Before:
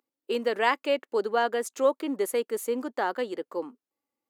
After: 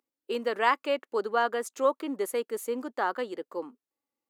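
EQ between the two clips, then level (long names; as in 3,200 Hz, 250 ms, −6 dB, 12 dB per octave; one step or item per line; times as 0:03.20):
dynamic equaliser 1,200 Hz, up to +7 dB, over −41 dBFS, Q 2.1
−3.0 dB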